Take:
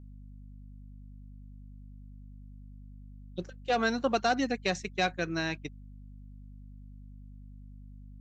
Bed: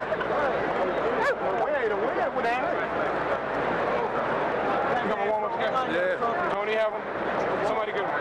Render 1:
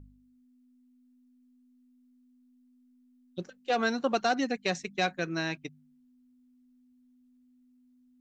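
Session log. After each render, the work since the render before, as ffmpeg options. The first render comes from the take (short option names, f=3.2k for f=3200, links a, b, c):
-af "bandreject=f=50:t=h:w=4,bandreject=f=100:t=h:w=4,bandreject=f=150:t=h:w=4,bandreject=f=200:t=h:w=4"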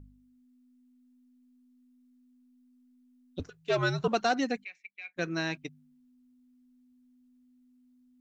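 -filter_complex "[0:a]asettb=1/sr,asplit=3[a][b][c];[a]atrim=end=3.394[d];[b]atrim=start=3.39:end=4.08,asetpts=PTS-STARTPTS,afade=t=in:d=0.004:c=qsin,afade=t=out:st=0.686:d=0.004:c=qsin,afreqshift=-89[e];[c]atrim=start=4.076[f];[d][e]acrossfade=d=0.004:c1=hsin:c2=qsin[g];[g][f]acrossfade=d=0.004:c1=qsin:c2=hsin,asplit=3[h][i][j];[h]afade=t=out:st=4.63:d=0.02[k];[i]bandpass=f=2.3k:t=q:w=16,afade=t=in:st=4.63:d=0.02,afade=t=out:st=5.16:d=0.02[l];[j]afade=t=in:st=5.16:d=0.02[m];[k][l][m]amix=inputs=3:normalize=0"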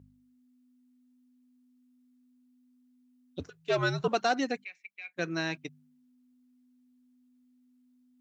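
-af "highpass=95,equalizer=f=220:t=o:w=0.3:g=-5"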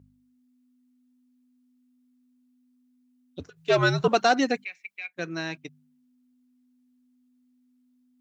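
-filter_complex "[0:a]asplit=3[a][b][c];[a]afade=t=out:st=3.56:d=0.02[d];[b]acontrast=74,afade=t=in:st=3.56:d=0.02,afade=t=out:st=5.06:d=0.02[e];[c]afade=t=in:st=5.06:d=0.02[f];[d][e][f]amix=inputs=3:normalize=0"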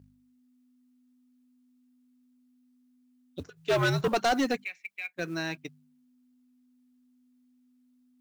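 -af "asoftclip=type=tanh:threshold=-20dB,acrusher=bits=7:mode=log:mix=0:aa=0.000001"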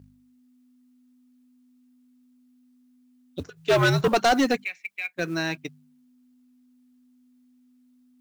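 -af "volume=5.5dB"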